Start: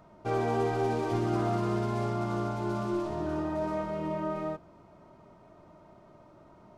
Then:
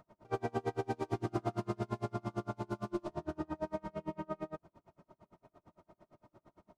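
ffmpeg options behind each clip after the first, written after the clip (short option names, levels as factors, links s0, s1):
-af "aeval=exprs='val(0)*pow(10,-35*(0.5-0.5*cos(2*PI*8.8*n/s))/20)':c=same,volume=0.841"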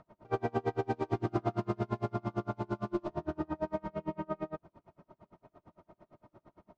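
-af "adynamicsmooth=sensitivity=3.5:basefreq=4500,volume=1.5"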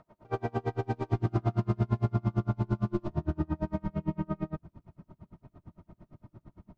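-af "asubboost=boost=6.5:cutoff=210"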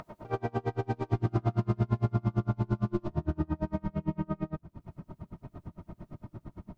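-af "acompressor=mode=upward:threshold=0.02:ratio=2.5"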